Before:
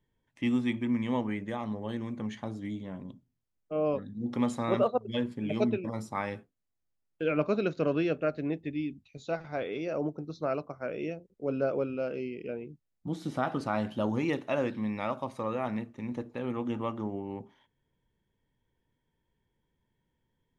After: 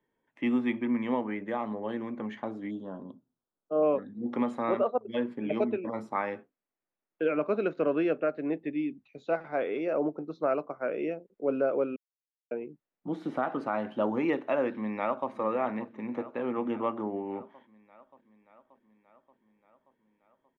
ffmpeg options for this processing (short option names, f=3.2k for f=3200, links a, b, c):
-filter_complex "[0:a]asettb=1/sr,asplit=3[a][b][c];[a]atrim=end=2.714[d];[b]atrim=start=2.71:end=3.83,asetpts=PTS-STARTPTS,afade=t=in:d=0.004:c=qsin,afade=t=out:st=1.116:d=0.004:c=qsin,asuperstop=centerf=2200:order=4:qfactor=1.3[e];[c]atrim=start=3.826[f];[d][e]acrossfade=d=0.004:c1=hsin:c2=qsin[g];[g][f]acrossfade=d=0.004:c1=qsin:c2=hsin,asplit=2[h][i];[i]afade=t=in:st=14.69:d=0.01,afade=t=out:st=15.3:d=0.01,aecho=0:1:580|1160|1740|2320|2900|3480|4060|4640|5220:0.188365|0.131855|0.0922988|0.0646092|0.0452264|0.0316585|0.0221609|0.0155127|0.0108589[j];[h][j]amix=inputs=2:normalize=0,asplit=3[k][l][m];[k]atrim=end=11.96,asetpts=PTS-STARTPTS,afade=t=out:st=11.956:d=0.004:c=hsin[n];[l]atrim=start=11.96:end=12.51,asetpts=PTS-STARTPTS,volume=0[o];[m]atrim=start=12.51,asetpts=PTS-STARTPTS,afade=t=in:d=0.004:c=hsin[p];[n][o][p]concat=n=3:v=0:a=1,acrossover=split=220 2600:gain=0.0891 1 0.1[q][r][s];[q][r][s]amix=inputs=3:normalize=0,alimiter=limit=-21.5dB:level=0:latency=1:release=348,volume=4.5dB"